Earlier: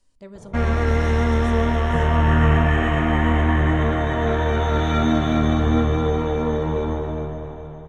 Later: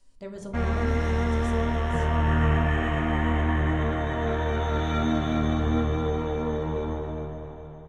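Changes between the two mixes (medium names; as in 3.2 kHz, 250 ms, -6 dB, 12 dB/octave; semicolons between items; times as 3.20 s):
speech: send +9.5 dB; background -6.0 dB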